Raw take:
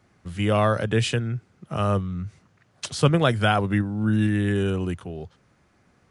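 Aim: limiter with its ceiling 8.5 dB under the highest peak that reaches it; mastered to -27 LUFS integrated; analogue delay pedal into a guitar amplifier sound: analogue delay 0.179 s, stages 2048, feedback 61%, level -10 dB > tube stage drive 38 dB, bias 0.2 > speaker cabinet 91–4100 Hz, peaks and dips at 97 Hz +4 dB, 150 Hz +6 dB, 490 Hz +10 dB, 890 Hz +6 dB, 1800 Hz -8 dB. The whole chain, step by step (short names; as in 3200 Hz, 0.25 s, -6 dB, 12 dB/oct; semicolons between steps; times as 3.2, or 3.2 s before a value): limiter -13 dBFS; analogue delay 0.179 s, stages 2048, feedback 61%, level -10 dB; tube stage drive 38 dB, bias 0.2; speaker cabinet 91–4100 Hz, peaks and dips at 97 Hz +4 dB, 150 Hz +6 dB, 490 Hz +10 dB, 890 Hz +6 dB, 1800 Hz -8 dB; gain +11 dB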